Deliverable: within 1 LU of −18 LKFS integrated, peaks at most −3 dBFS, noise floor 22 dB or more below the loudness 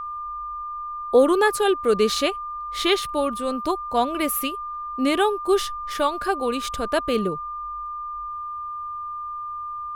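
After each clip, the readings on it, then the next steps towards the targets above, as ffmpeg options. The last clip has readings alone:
interfering tone 1,200 Hz; level of the tone −29 dBFS; integrated loudness −24.0 LKFS; sample peak −6.5 dBFS; target loudness −18.0 LKFS
→ -af "bandreject=frequency=1200:width=30"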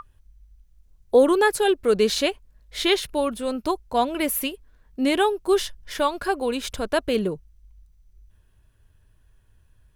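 interfering tone none found; integrated loudness −23.0 LKFS; sample peak −6.5 dBFS; target loudness −18.0 LKFS
→ -af "volume=5dB,alimiter=limit=-3dB:level=0:latency=1"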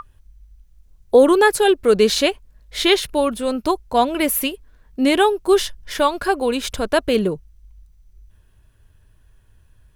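integrated loudness −18.0 LKFS; sample peak −3.0 dBFS; background noise floor −54 dBFS

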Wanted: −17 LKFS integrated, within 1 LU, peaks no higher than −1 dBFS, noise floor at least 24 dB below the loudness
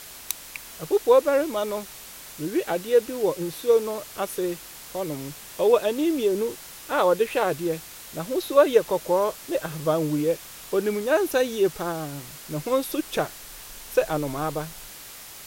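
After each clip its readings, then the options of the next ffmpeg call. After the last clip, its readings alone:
background noise floor −43 dBFS; target noise floor −49 dBFS; integrated loudness −25.0 LKFS; sample peak −5.0 dBFS; target loudness −17.0 LKFS
→ -af "afftdn=noise_reduction=6:noise_floor=-43"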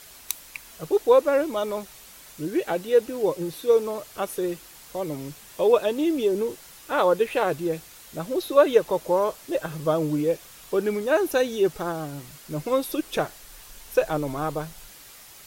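background noise floor −47 dBFS; target noise floor −49 dBFS
→ -af "afftdn=noise_reduction=6:noise_floor=-47"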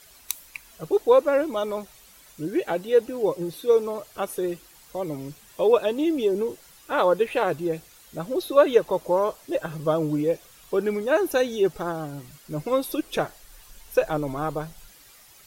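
background noise floor −52 dBFS; integrated loudness −25.0 LKFS; sample peak −5.0 dBFS; target loudness −17.0 LKFS
→ -af "volume=8dB,alimiter=limit=-1dB:level=0:latency=1"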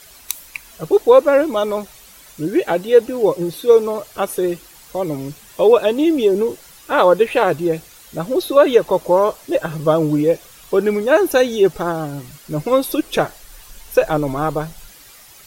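integrated loudness −17.0 LKFS; sample peak −1.0 dBFS; background noise floor −44 dBFS

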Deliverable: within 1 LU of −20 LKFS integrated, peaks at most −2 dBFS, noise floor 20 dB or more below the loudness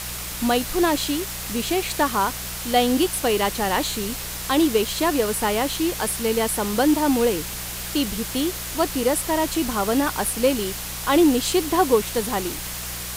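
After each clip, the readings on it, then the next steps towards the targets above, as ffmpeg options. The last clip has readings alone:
mains hum 60 Hz; hum harmonics up to 180 Hz; level of the hum −36 dBFS; background noise floor −32 dBFS; target noise floor −42 dBFS; integrated loudness −22.0 LKFS; sample peak −6.0 dBFS; target loudness −20.0 LKFS
→ -af "bandreject=frequency=60:width_type=h:width=4,bandreject=frequency=120:width_type=h:width=4,bandreject=frequency=180:width_type=h:width=4"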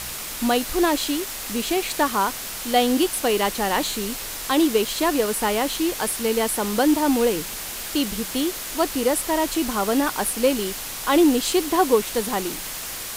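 mains hum none found; background noise floor −32 dBFS; target noise floor −42 dBFS
→ -af "afftdn=noise_reduction=10:noise_floor=-32"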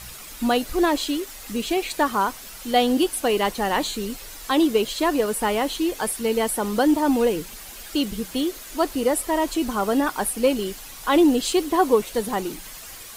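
background noise floor −40 dBFS; target noise floor −43 dBFS
→ -af "afftdn=noise_reduction=6:noise_floor=-40"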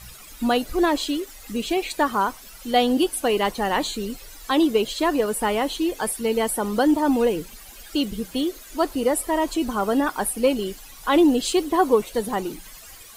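background noise floor −44 dBFS; integrated loudness −23.0 LKFS; sample peak −6.5 dBFS; target loudness −20.0 LKFS
→ -af "volume=3dB"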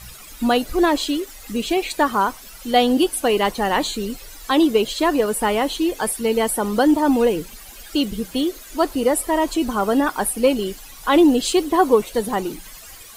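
integrated loudness −20.0 LKFS; sample peak −3.5 dBFS; background noise floor −41 dBFS

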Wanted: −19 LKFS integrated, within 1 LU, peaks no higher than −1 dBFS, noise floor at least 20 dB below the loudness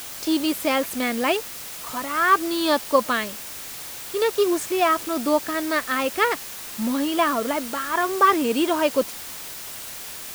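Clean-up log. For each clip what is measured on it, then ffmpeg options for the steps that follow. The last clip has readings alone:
background noise floor −36 dBFS; target noise floor −43 dBFS; integrated loudness −23.0 LKFS; sample peak −5.0 dBFS; target loudness −19.0 LKFS
→ -af "afftdn=noise_reduction=7:noise_floor=-36"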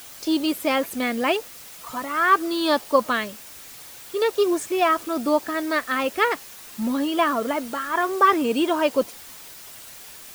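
background noise floor −42 dBFS; target noise floor −43 dBFS
→ -af "afftdn=noise_reduction=6:noise_floor=-42"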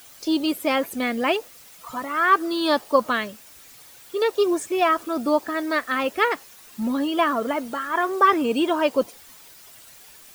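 background noise floor −48 dBFS; integrated loudness −23.0 LKFS; sample peak −5.5 dBFS; target loudness −19.0 LKFS
→ -af "volume=4dB"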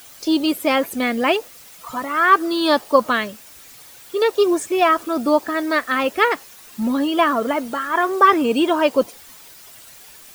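integrated loudness −19.0 LKFS; sample peak −1.5 dBFS; background noise floor −44 dBFS

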